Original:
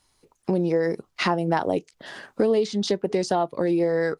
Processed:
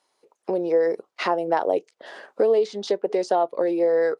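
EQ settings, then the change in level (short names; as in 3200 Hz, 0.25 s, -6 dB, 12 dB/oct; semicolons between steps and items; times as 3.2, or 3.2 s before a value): band-pass 500 Hz, Q 1.6; tilt +4.5 dB/oct; +8.5 dB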